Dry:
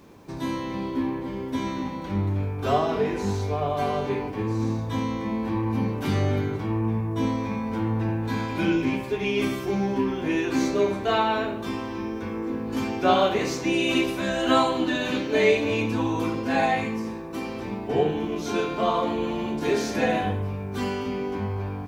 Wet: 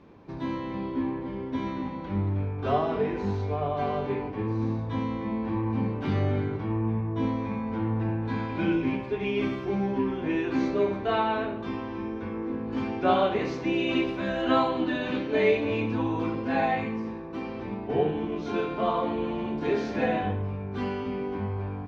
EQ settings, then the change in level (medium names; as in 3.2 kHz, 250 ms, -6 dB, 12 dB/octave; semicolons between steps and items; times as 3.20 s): distance through air 240 m; -2.0 dB